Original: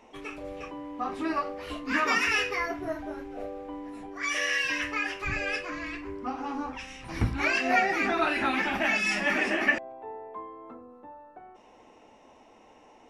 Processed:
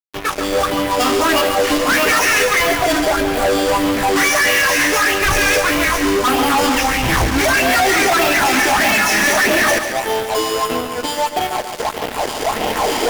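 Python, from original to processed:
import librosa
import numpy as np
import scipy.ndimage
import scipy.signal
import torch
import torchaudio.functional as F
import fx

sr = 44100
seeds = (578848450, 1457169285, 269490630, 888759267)

p1 = fx.recorder_agc(x, sr, target_db=-15.5, rise_db_per_s=6.3, max_gain_db=30)
p2 = scipy.signal.sosfilt(scipy.signal.butter(2, 8900.0, 'lowpass', fs=sr, output='sos'), p1)
p3 = fx.band_shelf(p2, sr, hz=970.0, db=10.0, octaves=2.5)
p4 = fx.notch(p3, sr, hz=540.0, q=12.0)
p5 = fx.sample_hold(p4, sr, seeds[0], rate_hz=4000.0, jitter_pct=0)
p6 = p4 + (p5 * librosa.db_to_amplitude(-6.0))
p7 = fx.phaser_stages(p6, sr, stages=4, low_hz=110.0, high_hz=1400.0, hz=1.6, feedback_pct=45)
p8 = fx.fuzz(p7, sr, gain_db=33.0, gate_db=-35.0)
y = p8 + fx.echo_feedback(p8, sr, ms=141, feedback_pct=57, wet_db=-9.0, dry=0)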